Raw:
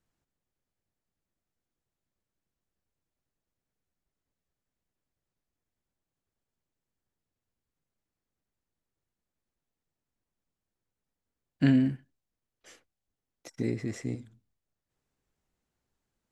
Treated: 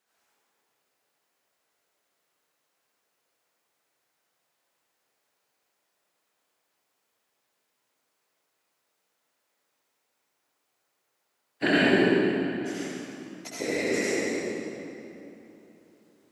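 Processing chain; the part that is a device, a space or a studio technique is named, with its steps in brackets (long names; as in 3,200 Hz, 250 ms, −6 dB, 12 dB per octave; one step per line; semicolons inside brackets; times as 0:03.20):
whispering ghost (random phases in short frames; high-pass filter 570 Hz 12 dB per octave; convolution reverb RT60 3.1 s, pre-delay 61 ms, DRR −9 dB)
level +8 dB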